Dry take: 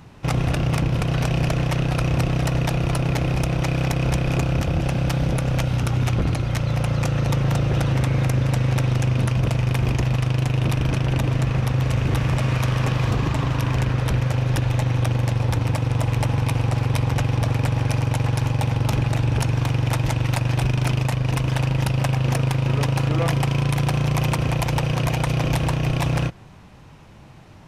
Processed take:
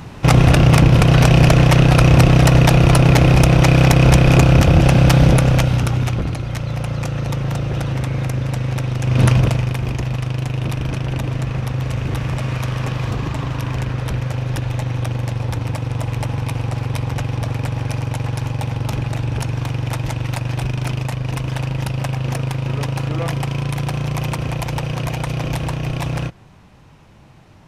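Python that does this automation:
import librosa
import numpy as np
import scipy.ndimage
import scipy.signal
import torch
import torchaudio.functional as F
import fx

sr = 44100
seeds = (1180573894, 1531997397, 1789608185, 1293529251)

y = fx.gain(x, sr, db=fx.line((5.29, 10.5), (6.31, -1.0), (9.0, -1.0), (9.26, 9.5), (9.77, -1.0)))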